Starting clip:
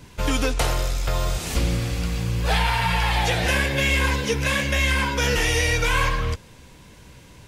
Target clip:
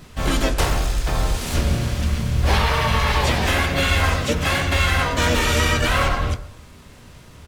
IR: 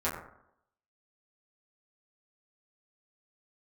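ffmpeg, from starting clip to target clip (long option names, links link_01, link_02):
-filter_complex "[0:a]asplit=4[link_01][link_02][link_03][link_04];[link_02]asetrate=22050,aresample=44100,atempo=2,volume=-4dB[link_05];[link_03]asetrate=29433,aresample=44100,atempo=1.49831,volume=-4dB[link_06];[link_04]asetrate=55563,aresample=44100,atempo=0.793701,volume=-1dB[link_07];[link_01][link_05][link_06][link_07]amix=inputs=4:normalize=0,asplit=2[link_08][link_09];[1:a]atrim=start_sample=2205[link_10];[link_09][link_10]afir=irnorm=-1:irlink=0,volume=-15dB[link_11];[link_08][link_11]amix=inputs=2:normalize=0,volume=-3.5dB"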